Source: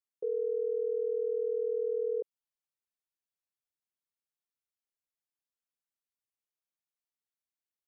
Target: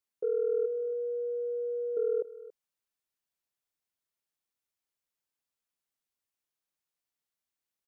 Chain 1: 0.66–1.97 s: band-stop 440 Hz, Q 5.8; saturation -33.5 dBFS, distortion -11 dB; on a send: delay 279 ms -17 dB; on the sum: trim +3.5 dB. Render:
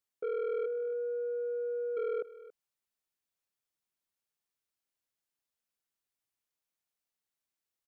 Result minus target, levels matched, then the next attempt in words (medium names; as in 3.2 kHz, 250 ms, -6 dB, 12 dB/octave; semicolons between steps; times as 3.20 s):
saturation: distortion +17 dB
0.66–1.97 s: band-stop 440 Hz, Q 5.8; saturation -21.5 dBFS, distortion -28 dB; on a send: delay 279 ms -17 dB; on the sum: trim +3.5 dB